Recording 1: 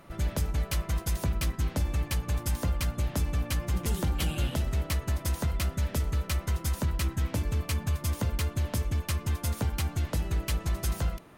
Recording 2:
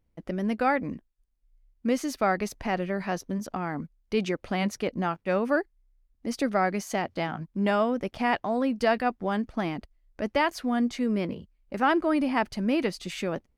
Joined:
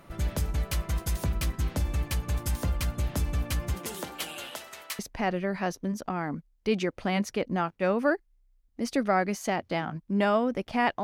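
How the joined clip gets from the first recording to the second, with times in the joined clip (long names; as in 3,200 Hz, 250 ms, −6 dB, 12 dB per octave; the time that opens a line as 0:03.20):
recording 1
0:03.73–0:04.99: high-pass filter 240 Hz → 1,200 Hz
0:04.99: continue with recording 2 from 0:02.45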